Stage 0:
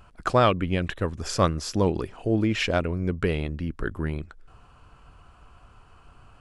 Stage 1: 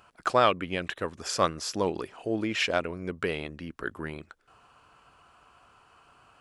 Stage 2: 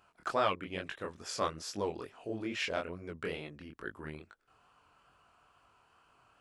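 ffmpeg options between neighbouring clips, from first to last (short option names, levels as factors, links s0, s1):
-af "highpass=f=520:p=1"
-af "flanger=delay=19:depth=7.7:speed=2.3,volume=0.562"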